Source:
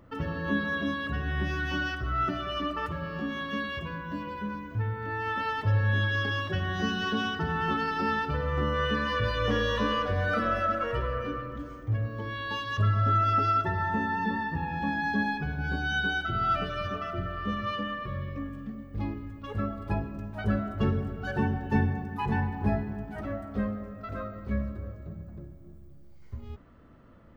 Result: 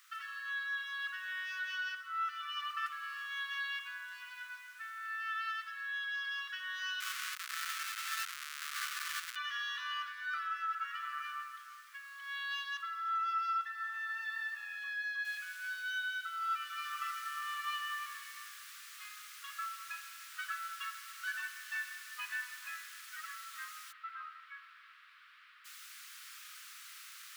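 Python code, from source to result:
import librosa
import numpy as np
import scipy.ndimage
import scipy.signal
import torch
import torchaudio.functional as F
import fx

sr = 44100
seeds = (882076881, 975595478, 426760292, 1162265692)

y = fx.schmitt(x, sr, flips_db=-27.5, at=(7.0, 9.36))
y = fx.noise_floor_step(y, sr, seeds[0], at_s=15.25, before_db=-59, after_db=-47, tilt_db=3.0)
y = fx.air_absorb(y, sr, metres=430.0, at=(23.91, 25.64), fade=0.02)
y = scipy.signal.sosfilt(scipy.signal.butter(12, 1200.0, 'highpass', fs=sr, output='sos'), y)
y = fx.rider(y, sr, range_db=4, speed_s=0.5)
y = F.gain(torch.from_numpy(y), -4.5).numpy()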